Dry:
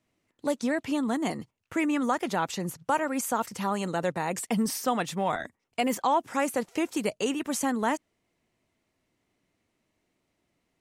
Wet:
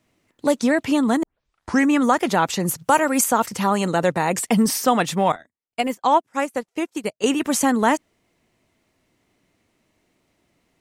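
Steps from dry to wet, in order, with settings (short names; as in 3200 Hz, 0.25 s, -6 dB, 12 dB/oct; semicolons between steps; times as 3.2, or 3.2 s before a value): 1.23 tape start 0.67 s; 2.65–3.24 high shelf 5700 Hz +8.5 dB; 5.32–7.24 upward expander 2.5:1, over -41 dBFS; gain +9 dB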